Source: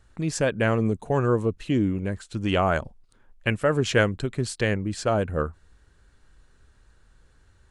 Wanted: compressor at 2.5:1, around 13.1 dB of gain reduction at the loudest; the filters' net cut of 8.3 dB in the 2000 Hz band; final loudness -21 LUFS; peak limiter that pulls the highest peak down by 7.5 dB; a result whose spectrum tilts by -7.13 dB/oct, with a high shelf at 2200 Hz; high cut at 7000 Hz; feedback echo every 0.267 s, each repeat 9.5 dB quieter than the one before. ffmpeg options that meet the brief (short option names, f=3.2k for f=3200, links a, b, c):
-af "lowpass=7k,equalizer=f=2k:t=o:g=-8.5,highshelf=f=2.2k:g=-6,acompressor=threshold=-38dB:ratio=2.5,alimiter=level_in=5dB:limit=-24dB:level=0:latency=1,volume=-5dB,aecho=1:1:267|534|801|1068:0.335|0.111|0.0365|0.012,volume=19dB"